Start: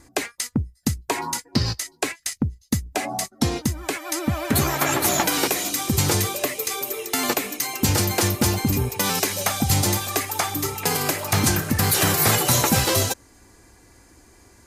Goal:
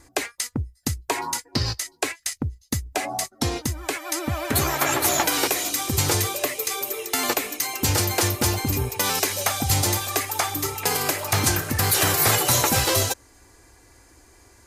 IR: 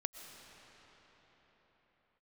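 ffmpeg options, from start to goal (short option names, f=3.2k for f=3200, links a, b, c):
-af "equalizer=f=190:t=o:w=0.9:g=-9"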